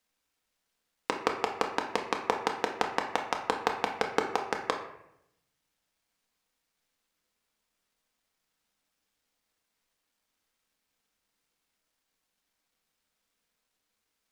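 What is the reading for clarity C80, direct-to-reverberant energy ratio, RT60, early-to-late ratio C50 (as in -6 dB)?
10.0 dB, 2.0 dB, 0.80 s, 7.0 dB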